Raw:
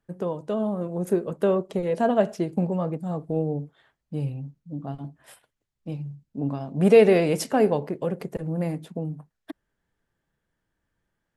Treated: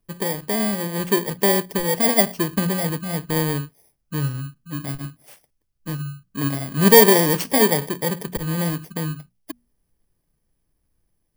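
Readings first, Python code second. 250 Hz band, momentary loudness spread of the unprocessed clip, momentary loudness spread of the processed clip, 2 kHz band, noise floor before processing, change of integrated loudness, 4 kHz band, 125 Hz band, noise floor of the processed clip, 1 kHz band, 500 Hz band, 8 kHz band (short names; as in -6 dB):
+3.0 dB, 17 LU, 17 LU, +11.0 dB, -81 dBFS, +5.0 dB, +15.5 dB, +4.0 dB, -72 dBFS, +6.0 dB, +1.0 dB, +17.5 dB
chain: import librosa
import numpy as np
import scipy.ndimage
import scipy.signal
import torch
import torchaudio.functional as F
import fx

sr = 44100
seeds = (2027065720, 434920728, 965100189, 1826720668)

y = fx.bit_reversed(x, sr, seeds[0], block=32)
y = fx.low_shelf(y, sr, hz=63.0, db=10.5)
y = fx.hum_notches(y, sr, base_hz=60, count=4)
y = F.gain(torch.from_numpy(y), 3.5).numpy()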